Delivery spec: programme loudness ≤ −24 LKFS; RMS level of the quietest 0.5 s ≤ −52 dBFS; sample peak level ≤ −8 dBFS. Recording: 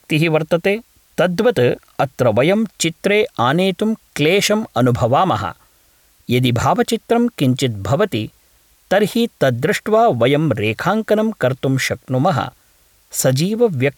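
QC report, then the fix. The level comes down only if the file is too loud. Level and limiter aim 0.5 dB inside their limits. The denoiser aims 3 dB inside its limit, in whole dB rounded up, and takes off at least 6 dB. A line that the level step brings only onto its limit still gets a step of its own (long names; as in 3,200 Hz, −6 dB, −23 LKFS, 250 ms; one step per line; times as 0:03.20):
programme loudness −17.0 LKFS: out of spec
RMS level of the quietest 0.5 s −55 dBFS: in spec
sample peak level −5.0 dBFS: out of spec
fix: level −7.5 dB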